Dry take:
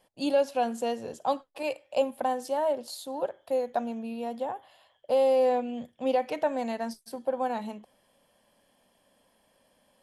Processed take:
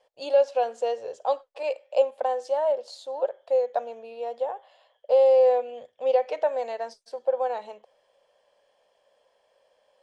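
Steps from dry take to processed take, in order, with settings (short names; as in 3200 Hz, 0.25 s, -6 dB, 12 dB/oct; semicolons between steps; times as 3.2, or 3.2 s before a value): LPF 7200 Hz 24 dB/oct; resonant low shelf 350 Hz -11.5 dB, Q 3; gain -2 dB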